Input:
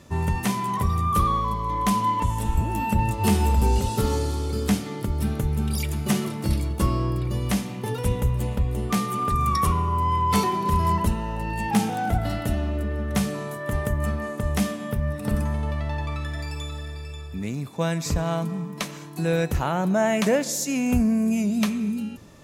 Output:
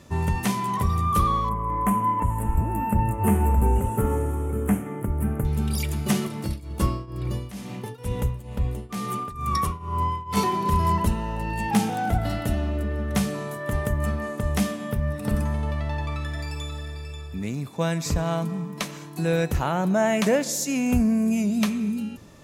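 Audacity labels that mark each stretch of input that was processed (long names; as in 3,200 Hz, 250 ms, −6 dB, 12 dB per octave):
1.490000	5.450000	Butterworth band-reject 4,500 Hz, Q 0.61
6.270000	10.370000	shaped tremolo triangle 2.2 Hz, depth 90%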